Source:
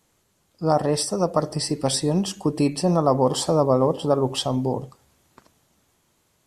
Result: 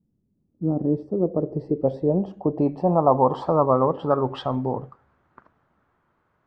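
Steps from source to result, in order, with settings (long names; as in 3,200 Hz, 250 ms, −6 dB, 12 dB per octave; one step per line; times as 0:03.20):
dynamic equaliser 3,900 Hz, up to +7 dB, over −43 dBFS, Q 1.1
low-pass filter sweep 210 Hz → 1,400 Hz, 0:00.06–0:03.97
level −2.5 dB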